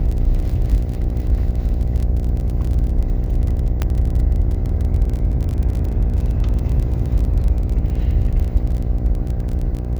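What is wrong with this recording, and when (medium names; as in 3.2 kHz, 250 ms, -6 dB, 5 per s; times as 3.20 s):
buzz 60 Hz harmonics 13 -22 dBFS
crackle 25 per s -24 dBFS
3.82 s: pop -7 dBFS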